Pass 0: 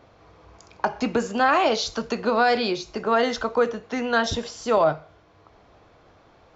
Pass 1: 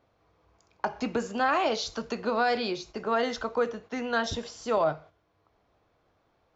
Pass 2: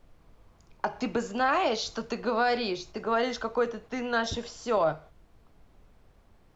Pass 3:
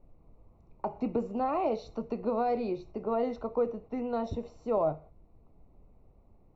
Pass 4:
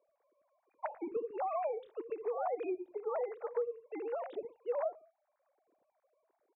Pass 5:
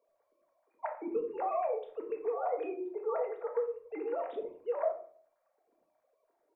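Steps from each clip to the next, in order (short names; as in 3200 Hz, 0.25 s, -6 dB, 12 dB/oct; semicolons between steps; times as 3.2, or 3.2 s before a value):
gate -41 dBFS, range -9 dB; gain -6 dB
added noise brown -56 dBFS
running mean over 27 samples
sine-wave speech; compressor 6:1, threshold -32 dBFS, peak gain reduction 13.5 dB; bands offset in time highs, lows 90 ms, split 230 Hz
shoebox room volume 550 m³, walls furnished, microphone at 1.7 m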